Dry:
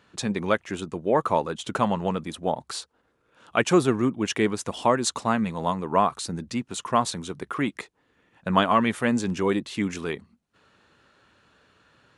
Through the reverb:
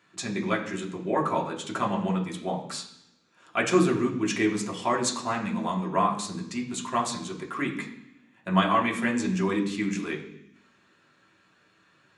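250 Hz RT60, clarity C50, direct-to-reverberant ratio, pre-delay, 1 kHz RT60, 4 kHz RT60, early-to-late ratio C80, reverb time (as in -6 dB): 1.1 s, 9.0 dB, -1.5 dB, 3 ms, 0.75 s, 1.1 s, 11.5 dB, 0.75 s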